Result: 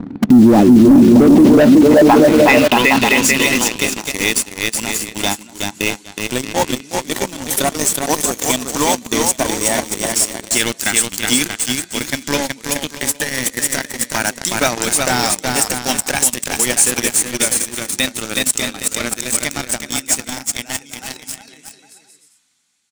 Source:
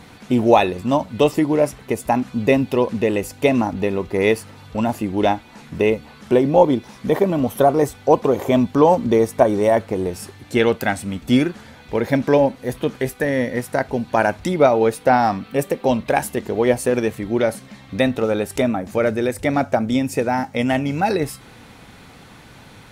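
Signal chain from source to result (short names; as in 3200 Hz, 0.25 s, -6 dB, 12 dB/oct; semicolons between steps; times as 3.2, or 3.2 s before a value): ending faded out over 4.64 s; band-pass sweep 270 Hz -> 7500 Hz, 1.06–3.39; bouncing-ball echo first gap 0.37 s, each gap 0.7×, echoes 5; sample leveller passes 3; resonant low shelf 360 Hz +7 dB, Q 1.5; in parallel at -7 dB: wrapped overs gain 23.5 dB; on the sum: maximiser +16 dB; gain -1 dB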